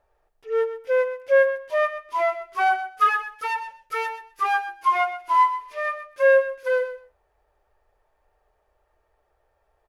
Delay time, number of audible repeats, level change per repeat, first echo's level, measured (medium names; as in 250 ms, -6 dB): 126 ms, 2, -16.5 dB, -11.5 dB